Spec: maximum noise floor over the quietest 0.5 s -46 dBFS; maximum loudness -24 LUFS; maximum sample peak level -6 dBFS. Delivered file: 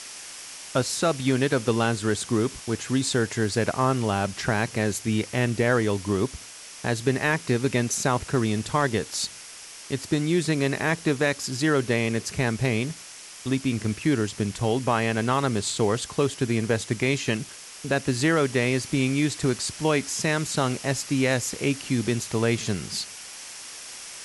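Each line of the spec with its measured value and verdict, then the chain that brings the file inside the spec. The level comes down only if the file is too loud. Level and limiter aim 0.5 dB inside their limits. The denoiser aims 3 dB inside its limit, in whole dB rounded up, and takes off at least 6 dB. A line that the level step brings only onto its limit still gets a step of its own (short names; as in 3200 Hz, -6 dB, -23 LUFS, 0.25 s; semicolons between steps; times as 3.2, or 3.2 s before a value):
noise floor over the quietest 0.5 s -43 dBFS: fail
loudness -25.0 LUFS: OK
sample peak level -11.0 dBFS: OK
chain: denoiser 6 dB, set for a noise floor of -43 dBFS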